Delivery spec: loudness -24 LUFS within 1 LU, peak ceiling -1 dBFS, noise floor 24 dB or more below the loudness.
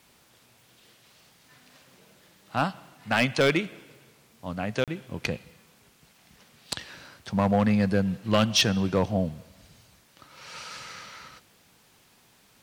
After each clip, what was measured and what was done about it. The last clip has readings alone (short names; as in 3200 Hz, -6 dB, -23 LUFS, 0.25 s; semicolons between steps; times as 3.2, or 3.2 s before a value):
clipped 0.3%; flat tops at -14.0 dBFS; dropouts 1; longest dropout 37 ms; loudness -26.5 LUFS; peak -14.0 dBFS; loudness target -24.0 LUFS
-> clip repair -14 dBFS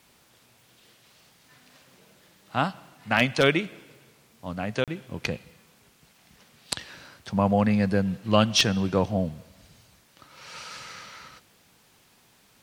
clipped 0.0%; dropouts 1; longest dropout 37 ms
-> interpolate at 4.84, 37 ms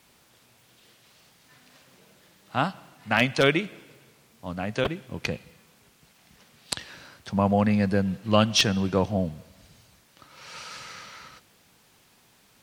dropouts 0; loudness -25.5 LUFS; peak -5.0 dBFS; loudness target -24.0 LUFS
-> gain +1.5 dB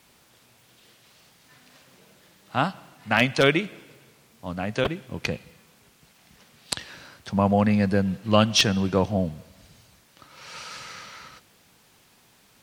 loudness -24.0 LUFS; peak -3.5 dBFS; noise floor -59 dBFS